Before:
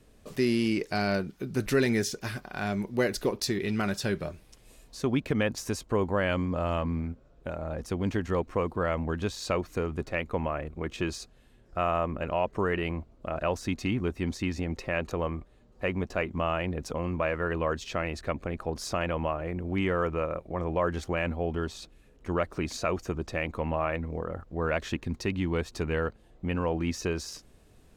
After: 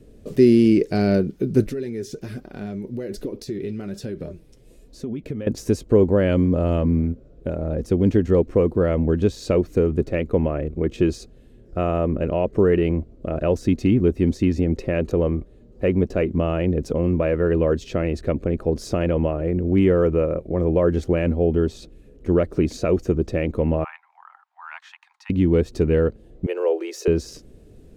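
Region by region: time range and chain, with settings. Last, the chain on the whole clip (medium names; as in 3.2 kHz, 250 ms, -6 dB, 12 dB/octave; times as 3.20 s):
1.64–5.47 s: compression 12:1, threshold -31 dBFS + flange 1.2 Hz, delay 3 ms, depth 5 ms, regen +60%
23.84–25.30 s: steep high-pass 830 Hz 96 dB/octave + tilt EQ -4.5 dB/octave
26.46–27.08 s: steep high-pass 360 Hz 72 dB/octave + treble shelf 9.9 kHz +8.5 dB
whole clip: resonant low shelf 630 Hz +10.5 dB, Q 1.5; band-stop 1.1 kHz, Q 26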